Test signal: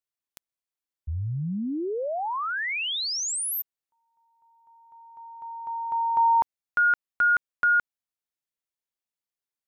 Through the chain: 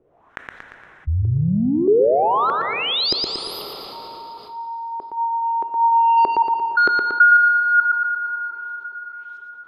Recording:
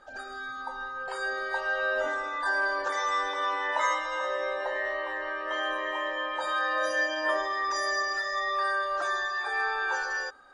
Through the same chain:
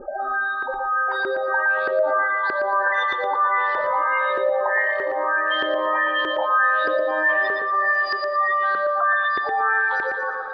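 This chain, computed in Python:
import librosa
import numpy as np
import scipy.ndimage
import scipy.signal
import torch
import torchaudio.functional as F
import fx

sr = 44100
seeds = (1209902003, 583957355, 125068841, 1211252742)

p1 = fx.spec_gate(x, sr, threshold_db=-15, keep='strong')
p2 = fx.peak_eq(p1, sr, hz=4600.0, db=-10.0, octaves=0.33)
p3 = 10.0 ** (-22.5 / 20.0) * np.tanh(p2 / 10.0 ** (-22.5 / 20.0))
p4 = p2 + (p3 * 10.0 ** (-4.0 / 20.0))
p5 = fx.filter_lfo_lowpass(p4, sr, shape='saw_up', hz=1.6, low_hz=380.0, high_hz=4700.0, q=4.0)
p6 = fx.echo_feedback(p5, sr, ms=116, feedback_pct=37, wet_db=-6.5)
p7 = fx.rev_plate(p6, sr, seeds[0], rt60_s=3.1, hf_ratio=0.75, predelay_ms=0, drr_db=15.0)
p8 = fx.env_flatten(p7, sr, amount_pct=50)
y = p8 * 10.0 ** (-3.5 / 20.0)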